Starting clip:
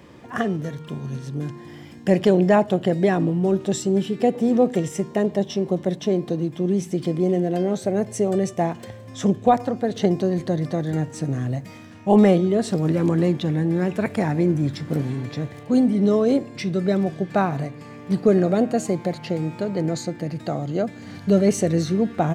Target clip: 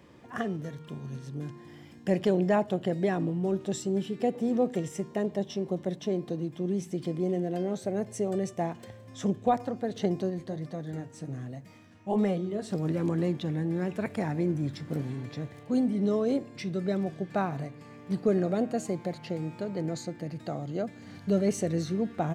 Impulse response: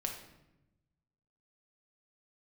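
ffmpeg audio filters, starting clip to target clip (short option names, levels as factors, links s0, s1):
-filter_complex "[0:a]asplit=3[s0][s1][s2];[s0]afade=t=out:st=10.29:d=0.02[s3];[s1]flanger=delay=4.2:depth=7.4:regen=-55:speed=1.3:shape=sinusoidal,afade=t=in:st=10.29:d=0.02,afade=t=out:st=12.69:d=0.02[s4];[s2]afade=t=in:st=12.69:d=0.02[s5];[s3][s4][s5]amix=inputs=3:normalize=0,volume=0.376"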